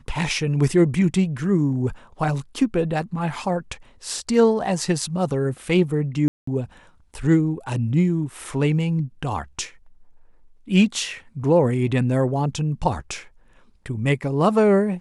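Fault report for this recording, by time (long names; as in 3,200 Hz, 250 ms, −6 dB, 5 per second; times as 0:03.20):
0:06.28–0:06.47: drop-out 194 ms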